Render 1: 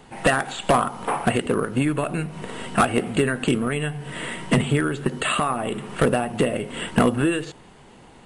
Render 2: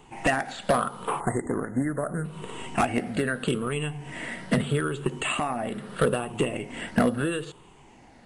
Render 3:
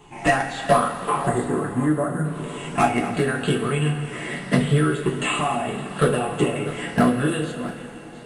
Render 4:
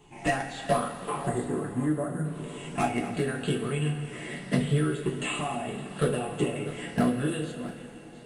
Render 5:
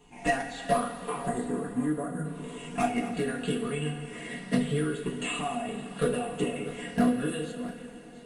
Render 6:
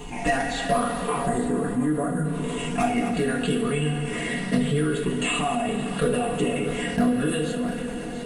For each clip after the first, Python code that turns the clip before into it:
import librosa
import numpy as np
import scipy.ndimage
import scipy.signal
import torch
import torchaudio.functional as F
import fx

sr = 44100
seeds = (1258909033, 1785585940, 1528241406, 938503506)

y1 = fx.spec_ripple(x, sr, per_octave=0.68, drift_hz=-0.78, depth_db=8)
y1 = fx.spec_erase(y1, sr, start_s=1.2, length_s=1.05, low_hz=2100.0, high_hz=6500.0)
y1 = y1 * librosa.db_to_amplitude(-5.5)
y2 = fx.reverse_delay(y1, sr, ms=489, wet_db=-14.0)
y2 = fx.rev_double_slope(y2, sr, seeds[0], early_s=0.26, late_s=3.7, knee_db=-18, drr_db=-3.0)
y3 = fx.peak_eq(y2, sr, hz=1200.0, db=-5.5, octaves=1.3)
y3 = y3 * librosa.db_to_amplitude(-6.0)
y4 = y3 + 0.61 * np.pad(y3, (int(4.2 * sr / 1000.0), 0))[:len(y3)]
y4 = y4 * librosa.db_to_amplitude(-2.5)
y5 = fx.low_shelf(y4, sr, hz=67.0, db=7.5)
y5 = fx.env_flatten(y5, sr, amount_pct=50)
y5 = y5 * librosa.db_to_amplitude(1.0)